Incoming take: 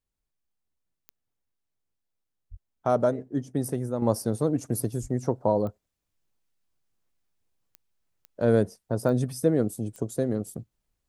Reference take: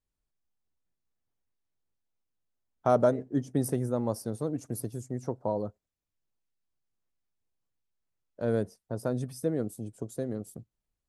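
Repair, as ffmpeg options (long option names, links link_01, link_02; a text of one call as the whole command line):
ffmpeg -i in.wav -filter_complex "[0:a]adeclick=threshold=4,asplit=3[link_01][link_02][link_03];[link_01]afade=type=out:start_time=2.5:duration=0.02[link_04];[link_02]highpass=frequency=140:width=0.5412,highpass=frequency=140:width=1.3066,afade=type=in:start_time=2.5:duration=0.02,afade=type=out:start_time=2.62:duration=0.02[link_05];[link_03]afade=type=in:start_time=2.62:duration=0.02[link_06];[link_04][link_05][link_06]amix=inputs=3:normalize=0,asplit=3[link_07][link_08][link_09];[link_07]afade=type=out:start_time=5.01:duration=0.02[link_10];[link_08]highpass=frequency=140:width=0.5412,highpass=frequency=140:width=1.3066,afade=type=in:start_time=5.01:duration=0.02,afade=type=out:start_time=5.13:duration=0.02[link_11];[link_09]afade=type=in:start_time=5.13:duration=0.02[link_12];[link_10][link_11][link_12]amix=inputs=3:normalize=0,asetnsamples=nb_out_samples=441:pad=0,asendcmd='4.02 volume volume -7dB',volume=0dB" out.wav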